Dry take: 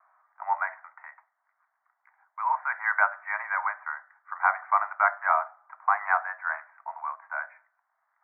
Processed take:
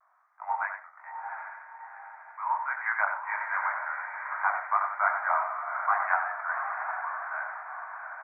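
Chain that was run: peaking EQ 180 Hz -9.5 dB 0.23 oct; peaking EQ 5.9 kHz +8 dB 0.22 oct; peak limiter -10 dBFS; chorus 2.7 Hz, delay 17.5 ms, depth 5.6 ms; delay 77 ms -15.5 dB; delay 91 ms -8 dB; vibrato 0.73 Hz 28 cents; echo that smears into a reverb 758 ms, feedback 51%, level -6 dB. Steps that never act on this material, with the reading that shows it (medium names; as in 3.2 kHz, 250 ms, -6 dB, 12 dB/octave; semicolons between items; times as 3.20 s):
peaking EQ 180 Hz: input has nothing below 540 Hz; peaking EQ 5.9 kHz: input has nothing above 2.4 kHz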